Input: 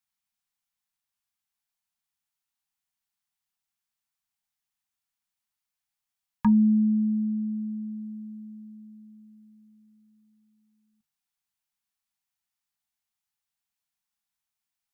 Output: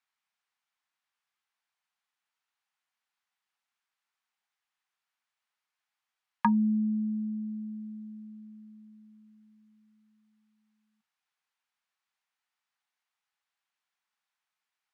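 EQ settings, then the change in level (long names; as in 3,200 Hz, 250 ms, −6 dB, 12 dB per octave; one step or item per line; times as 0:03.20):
resonant band-pass 1,400 Hz, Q 0.73
+7.5 dB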